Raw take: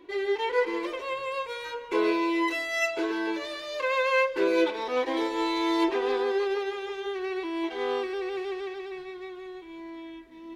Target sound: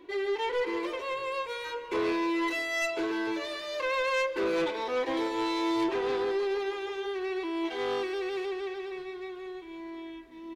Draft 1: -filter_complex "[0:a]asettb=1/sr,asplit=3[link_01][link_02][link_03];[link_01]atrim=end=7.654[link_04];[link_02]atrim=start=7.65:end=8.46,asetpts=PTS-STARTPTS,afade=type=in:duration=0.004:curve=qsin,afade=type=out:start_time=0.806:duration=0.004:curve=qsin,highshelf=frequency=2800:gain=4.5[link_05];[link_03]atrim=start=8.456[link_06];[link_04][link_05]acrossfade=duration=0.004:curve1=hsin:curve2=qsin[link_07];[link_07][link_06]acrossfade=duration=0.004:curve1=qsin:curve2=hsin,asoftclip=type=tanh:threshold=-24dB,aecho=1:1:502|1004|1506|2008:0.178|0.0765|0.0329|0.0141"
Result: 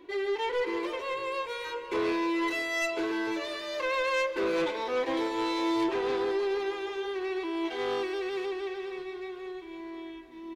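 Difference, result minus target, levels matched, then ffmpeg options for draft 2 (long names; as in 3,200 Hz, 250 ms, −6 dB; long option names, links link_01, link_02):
echo-to-direct +7 dB
-filter_complex "[0:a]asettb=1/sr,asplit=3[link_01][link_02][link_03];[link_01]atrim=end=7.654[link_04];[link_02]atrim=start=7.65:end=8.46,asetpts=PTS-STARTPTS,afade=type=in:duration=0.004:curve=qsin,afade=type=out:start_time=0.806:duration=0.004:curve=qsin,highshelf=frequency=2800:gain=4.5[link_05];[link_03]atrim=start=8.456[link_06];[link_04][link_05]acrossfade=duration=0.004:curve1=hsin:curve2=qsin[link_07];[link_07][link_06]acrossfade=duration=0.004:curve1=qsin:curve2=hsin,asoftclip=type=tanh:threshold=-24dB,aecho=1:1:502|1004|1506:0.0794|0.0342|0.0147"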